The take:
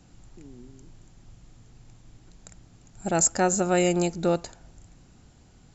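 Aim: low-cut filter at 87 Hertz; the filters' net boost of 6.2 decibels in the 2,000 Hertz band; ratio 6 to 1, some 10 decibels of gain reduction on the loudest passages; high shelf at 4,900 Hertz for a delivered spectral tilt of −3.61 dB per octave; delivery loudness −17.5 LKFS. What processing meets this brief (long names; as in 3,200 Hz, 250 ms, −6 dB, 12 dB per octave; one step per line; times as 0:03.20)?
high-pass filter 87 Hz
parametric band 2,000 Hz +7.5 dB
high-shelf EQ 4,900 Hz +5 dB
downward compressor 6 to 1, threshold −24 dBFS
level +11.5 dB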